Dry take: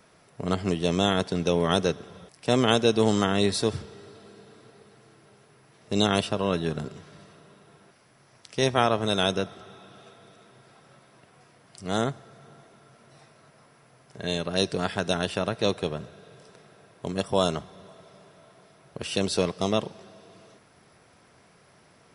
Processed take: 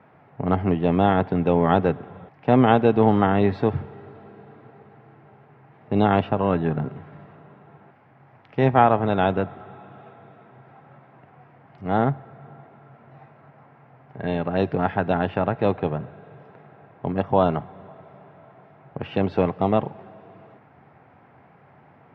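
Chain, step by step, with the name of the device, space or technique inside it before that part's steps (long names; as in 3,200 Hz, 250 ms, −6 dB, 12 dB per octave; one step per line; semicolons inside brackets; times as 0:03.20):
bass cabinet (loudspeaker in its box 73–2,300 Hz, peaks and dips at 94 Hz +6 dB, 140 Hz +7 dB, 260 Hz +5 dB, 810 Hz +10 dB)
level +2.5 dB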